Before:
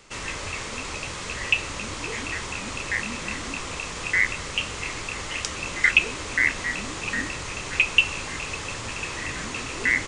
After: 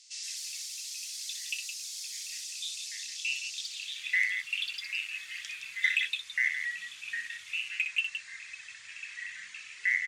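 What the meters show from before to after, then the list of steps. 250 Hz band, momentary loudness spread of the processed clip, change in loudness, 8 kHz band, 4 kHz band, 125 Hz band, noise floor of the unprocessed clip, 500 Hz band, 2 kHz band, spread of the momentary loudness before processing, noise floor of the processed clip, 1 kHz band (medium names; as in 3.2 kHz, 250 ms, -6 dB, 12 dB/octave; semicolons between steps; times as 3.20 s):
under -40 dB, 13 LU, -7.0 dB, -5.0 dB, -5.5 dB, under -40 dB, -34 dBFS, under -40 dB, -7.5 dB, 12 LU, -49 dBFS, under -25 dB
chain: pre-emphasis filter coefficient 0.8; reverb removal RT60 1.8 s; high-order bell 580 Hz -14.5 dB 2.8 oct; band-pass sweep 5 kHz -> 1.8 kHz, 3.62–4.18 s; in parallel at -5 dB: hard clipper -27 dBFS, distortion -13 dB; on the sum: harmonic-percussive split harmonic +6 dB; ever faster or slower copies 151 ms, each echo +5 st, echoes 2, each echo -6 dB; on a send: loudspeakers at several distances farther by 21 m -7 dB, 57 m -8 dB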